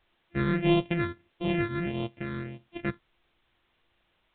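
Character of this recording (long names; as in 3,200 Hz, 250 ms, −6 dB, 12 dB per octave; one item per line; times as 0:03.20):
a buzz of ramps at a fixed pitch in blocks of 128 samples
phaser sweep stages 6, 1.6 Hz, lowest notch 740–1,600 Hz
a quantiser's noise floor 12 bits, dither triangular
mu-law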